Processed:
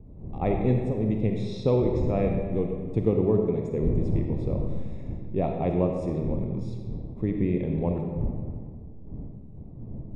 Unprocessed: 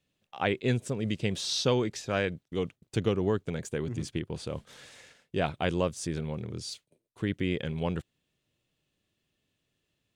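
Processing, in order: wind noise 150 Hz -39 dBFS; boxcar filter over 29 samples; algorithmic reverb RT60 1.6 s, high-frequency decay 0.7×, pre-delay 10 ms, DRR 2 dB; trim +4 dB

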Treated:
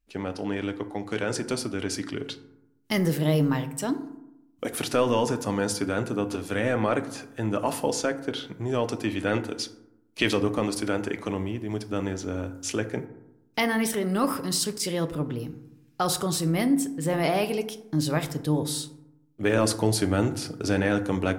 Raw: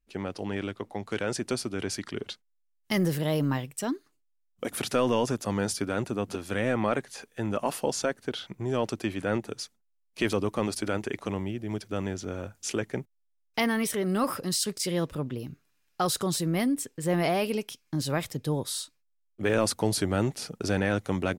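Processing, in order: 9.07–10.37 s: dynamic bell 3.3 kHz, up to +7 dB, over -48 dBFS, Q 0.97; FDN reverb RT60 0.86 s, low-frequency decay 1.3×, high-frequency decay 0.4×, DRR 8.5 dB; trim +1.5 dB

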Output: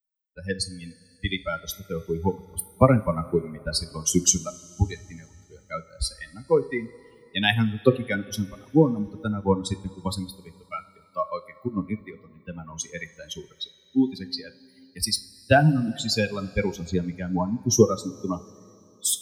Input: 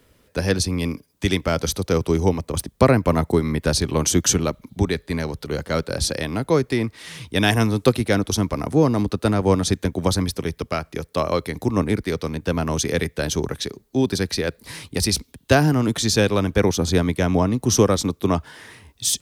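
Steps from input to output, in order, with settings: expander on every frequency bin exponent 3; two-slope reverb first 0.3 s, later 3.1 s, from -18 dB, DRR 11 dB; trim +3.5 dB

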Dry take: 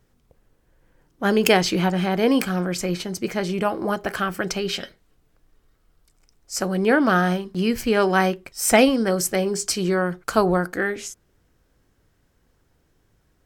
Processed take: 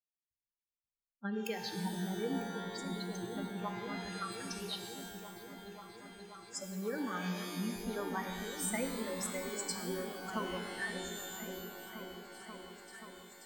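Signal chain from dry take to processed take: expander on every frequency bin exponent 3; rippled EQ curve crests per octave 0.98, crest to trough 10 dB; compression 5:1, threshold -33 dBFS, peak gain reduction 20 dB; delay with an opening low-pass 532 ms, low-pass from 200 Hz, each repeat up 1 oct, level -3 dB; pitch-shifted reverb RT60 1.6 s, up +12 st, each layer -2 dB, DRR 6 dB; trim -4.5 dB

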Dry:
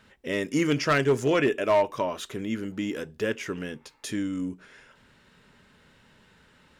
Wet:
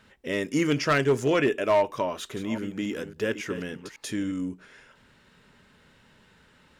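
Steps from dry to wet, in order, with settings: 2.03–4.32 s: chunks repeated in reverse 276 ms, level -10.5 dB

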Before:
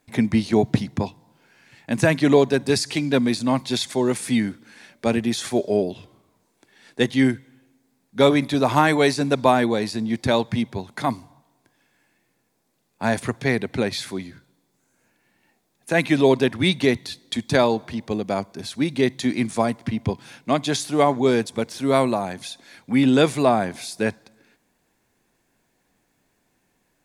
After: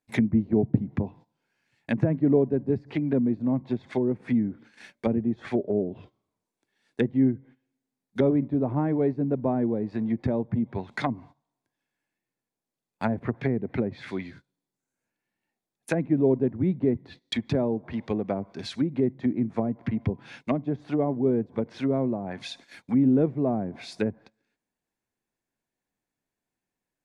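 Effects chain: low-pass that closes with the level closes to 400 Hz, closed at -18.5 dBFS; dynamic bell 2.1 kHz, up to +6 dB, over -50 dBFS, Q 1.7; gate -45 dBFS, range -17 dB; trim -2.5 dB

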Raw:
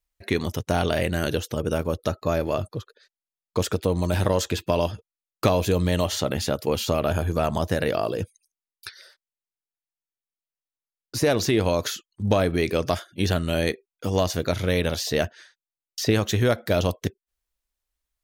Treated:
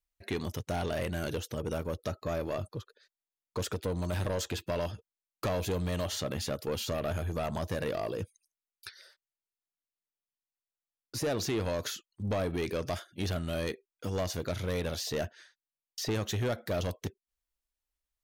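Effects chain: saturation -19.5 dBFS, distortion -11 dB; trim -6.5 dB

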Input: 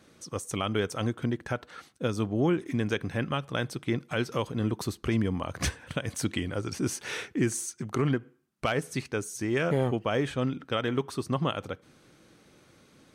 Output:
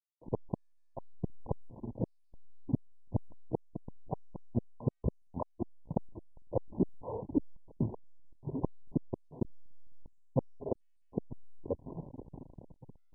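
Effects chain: on a send: echo that smears into a reverb 521 ms, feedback 60%, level -12 dB; on the sum: reverb removal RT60 1.5 s; inverted gate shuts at -22 dBFS, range -40 dB; hysteresis with a dead band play -37.5 dBFS; trim +5.5 dB; MP2 8 kbps 22.05 kHz

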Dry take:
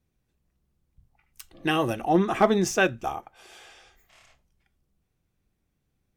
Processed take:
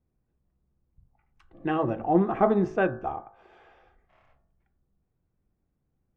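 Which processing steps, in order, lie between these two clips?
low-pass 1.2 kHz 12 dB/octave; de-hum 53.17 Hz, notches 34

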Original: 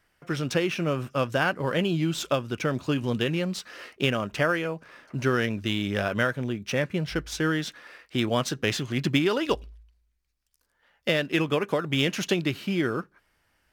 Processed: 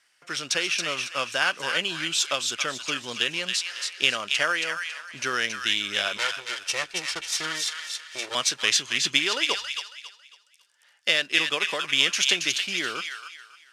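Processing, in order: 6.17–8.35 s: comb filter that takes the minimum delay 2.2 ms; frequency weighting ITU-R 468; feedback echo behind a high-pass 275 ms, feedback 31%, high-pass 1.4 kHz, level -4 dB; trim -1.5 dB

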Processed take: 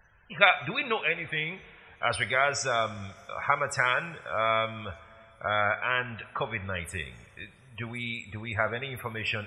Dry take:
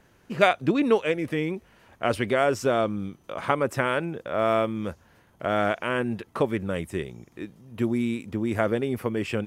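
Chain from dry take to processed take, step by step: loudest bins only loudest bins 64; amplifier tone stack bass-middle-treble 10-0-10; two-slope reverb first 0.55 s, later 3.6 s, from -16 dB, DRR 11.5 dB; trim +9 dB

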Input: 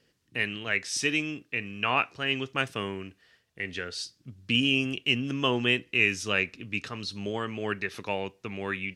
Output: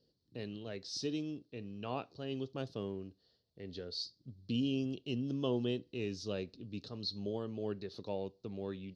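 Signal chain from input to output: FFT filter 560 Hz 0 dB, 2.3 kHz -26 dB, 4.3 kHz +5 dB, 8.3 kHz -22 dB; trim -5.5 dB

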